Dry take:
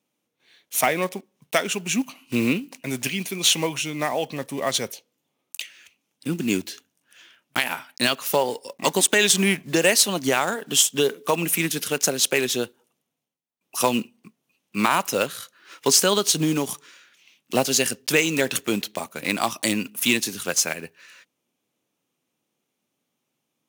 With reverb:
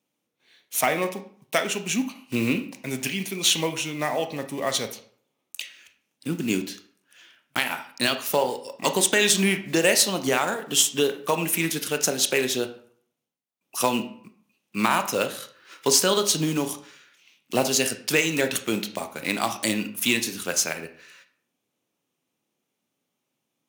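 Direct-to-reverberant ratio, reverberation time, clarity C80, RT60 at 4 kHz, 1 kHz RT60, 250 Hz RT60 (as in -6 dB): 8.0 dB, 0.60 s, 15.5 dB, 0.40 s, 0.60 s, 0.55 s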